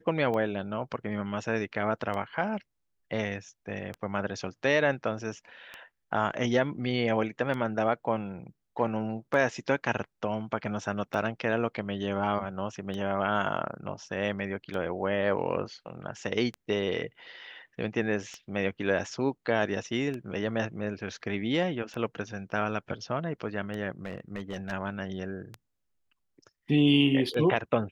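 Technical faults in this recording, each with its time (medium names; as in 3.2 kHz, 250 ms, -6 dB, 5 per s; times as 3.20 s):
tick 33 1/3 rpm -23 dBFS
24.05–24.73 s: clipped -29 dBFS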